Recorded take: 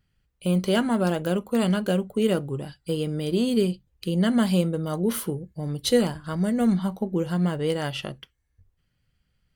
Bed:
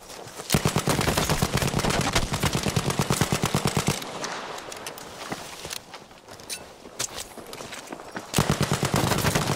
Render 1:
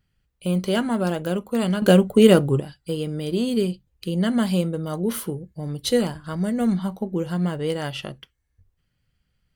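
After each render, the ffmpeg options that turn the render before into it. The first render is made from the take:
-filter_complex "[0:a]asplit=3[a][b][c];[a]atrim=end=1.822[d];[b]atrim=start=1.818:end=2.602,asetpts=PTS-STARTPTS,volume=9.5dB[e];[c]atrim=start=2.598[f];[d][e]acrossfade=d=0.004:c1=hsin:c2=hsin[g];[g][f]acrossfade=d=0.004:c1=hsin:c2=hsin"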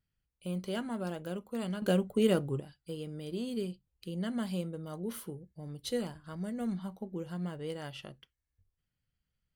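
-af "volume=-13.5dB"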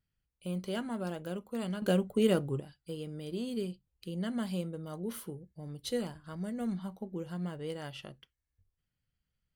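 -af anull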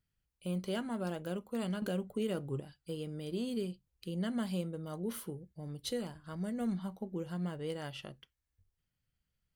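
-af "alimiter=level_in=2dB:limit=-24dB:level=0:latency=1:release=393,volume=-2dB"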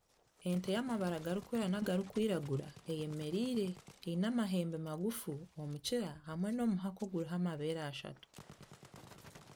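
-filter_complex "[1:a]volume=-32.5dB[a];[0:a][a]amix=inputs=2:normalize=0"

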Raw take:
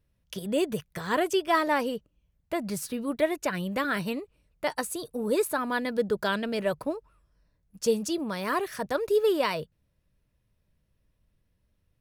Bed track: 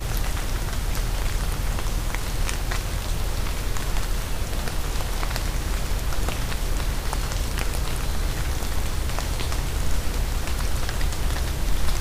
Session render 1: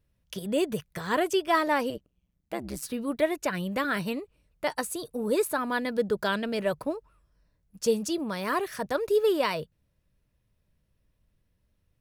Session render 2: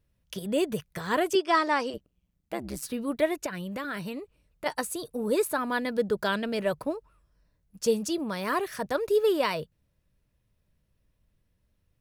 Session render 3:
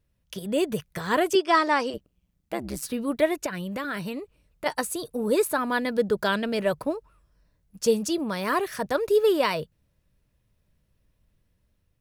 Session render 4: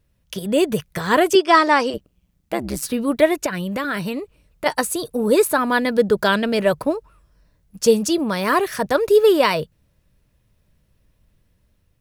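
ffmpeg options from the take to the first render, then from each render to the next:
-filter_complex "[0:a]asettb=1/sr,asplit=3[a][b][c];[a]atrim=end=1.904[d];[b]atrim=start=1.9:end=2.83,asetpts=PTS-STARTPTS,afade=t=in:d=0.004:c=qsin,afade=t=out:st=0.926:d=0.004:c=qsin,tremolo=f=130:d=0.947[e];[c]atrim=start=2.826[f];[d][e]acrossfade=d=0.004:c1=hsin:c2=qsin[g];[g][f]acrossfade=d=0.004:c1=qsin:c2=hsin"
-filter_complex "[0:a]asettb=1/sr,asplit=3[a][b][c];[a]atrim=end=1.354[d];[b]atrim=start=1.35:end=1.94,asetpts=PTS-STARTPTS,afade=t=in:d=0.004:c=qsin,afade=t=out:st=0.586:d=0.004:c=qsin,highpass=290,equalizer=f=370:t=q:w=4:g=4,equalizer=f=570:t=q:w=4:g=-4,equalizer=f=1.2k:t=q:w=4:g=3,equalizer=f=5.2k:t=q:w=4:g=8,lowpass=f=8.6k:w=0.5412,lowpass=f=8.6k:w=1.3066[e];[c]atrim=start=1.936[f];[d][e]acrossfade=d=0.004:c1=hsin:c2=qsin[g];[g][f]acrossfade=d=0.004:c1=qsin:c2=hsin,asettb=1/sr,asplit=3[h][i][j];[h]atrim=end=3.464[k];[i]atrim=start=3.46:end=4.66,asetpts=PTS-STARTPTS,afade=t=in:d=0.004:c=qsin,afade=t=out:st=1.196:d=0.004:c=qsin,acompressor=threshold=-33dB:ratio=2.5:attack=3.2:release=140:knee=1:detection=peak[l];[j]atrim=start=4.656[m];[k][l]acrossfade=d=0.004:c1=hsin:c2=qsin[n];[n][m]acrossfade=d=0.004:c1=qsin:c2=hsin"
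-af "dynaudnorm=f=230:g=5:m=3dB"
-af "volume=7dB"

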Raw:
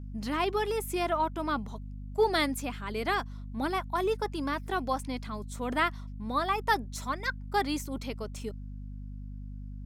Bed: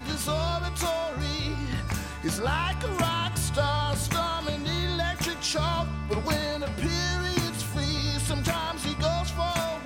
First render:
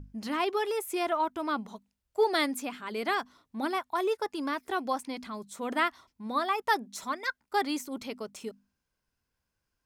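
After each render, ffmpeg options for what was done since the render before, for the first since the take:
-af "bandreject=f=50:t=h:w=6,bandreject=f=100:t=h:w=6,bandreject=f=150:t=h:w=6,bandreject=f=200:t=h:w=6,bandreject=f=250:t=h:w=6"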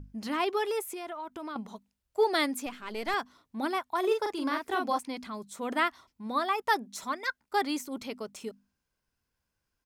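-filter_complex "[0:a]asettb=1/sr,asplit=3[a][b][c];[a]atrim=end=0.824[d];[b]atrim=start=0.82:end=1.56,asetpts=PTS-STARTPTS,afade=t=in:d=0.004:c=qsin,afade=t=out:st=0.736:d=0.004:c=qsin,acompressor=threshold=-36dB:ratio=6:attack=3.2:release=140:knee=1:detection=peak[e];[c]atrim=start=1.556[f];[d][e]acrossfade=d=0.004:c1=hsin:c2=qsin[g];[g][f]acrossfade=d=0.004:c1=qsin:c2=hsin,asettb=1/sr,asplit=3[h][i][j];[h]atrim=end=2.664[k];[i]atrim=start=2.66:end=3.14,asetpts=PTS-STARTPTS,afade=t=in:d=0.004:c=qsin,afade=t=out:st=0.476:d=0.004:c=qsin,aeval=exprs='if(lt(val(0),0),0.447*val(0),val(0))':c=same[l];[j]atrim=start=3.136[m];[k][l]acrossfade=d=0.004:c1=hsin:c2=qsin[n];[n][m]acrossfade=d=0.004:c1=qsin:c2=hsin,asplit=3[o][p][q];[o]afade=t=out:st=4.03:d=0.02[r];[p]asplit=2[s][t];[t]adelay=41,volume=-3.5dB[u];[s][u]amix=inputs=2:normalize=0,afade=t=in:st=4.03:d=0.02,afade=t=out:st=4.97:d=0.02[v];[q]afade=t=in:st=4.97:d=0.02[w];[r][v][w]amix=inputs=3:normalize=0"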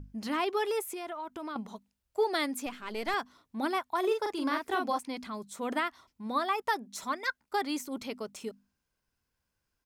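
-af "alimiter=limit=-19.5dB:level=0:latency=1:release=269"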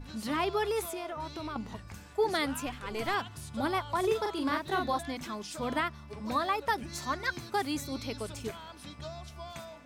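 -filter_complex "[1:a]volume=-16dB[a];[0:a][a]amix=inputs=2:normalize=0"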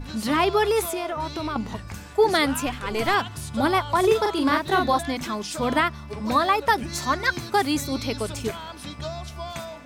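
-af "volume=9.5dB"

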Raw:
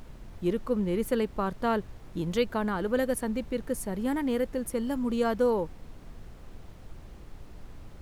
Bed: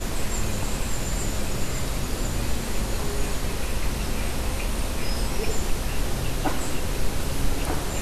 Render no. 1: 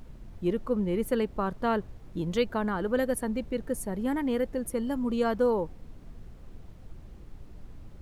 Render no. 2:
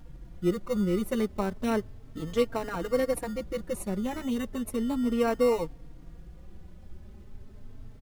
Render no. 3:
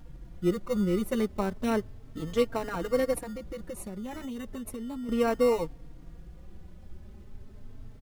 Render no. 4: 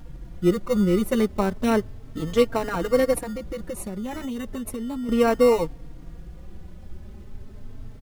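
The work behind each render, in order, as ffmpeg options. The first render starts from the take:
-af "afftdn=nr=6:nf=-48"
-filter_complex "[0:a]asplit=2[a][b];[b]acrusher=samples=27:mix=1:aa=0.000001,volume=-7.5dB[c];[a][c]amix=inputs=2:normalize=0,asplit=2[d][e];[e]adelay=3.8,afreqshift=0.34[f];[d][f]amix=inputs=2:normalize=1"
-filter_complex "[0:a]asettb=1/sr,asplit=3[a][b][c];[a]atrim=end=3.194[d];[b]atrim=start=3.19:end=5.09,asetpts=PTS-STARTPTS,afade=t=in:d=0.004:c=qsin,afade=t=out:st=1.896:d=0.004:c=qsin,acompressor=threshold=-34dB:ratio=6:attack=3.2:release=140:knee=1:detection=peak[e];[c]atrim=start=5.086[f];[d][e]acrossfade=d=0.004:c1=hsin:c2=qsin[g];[g][f]acrossfade=d=0.004:c1=qsin:c2=hsin"
-af "volume=6.5dB"

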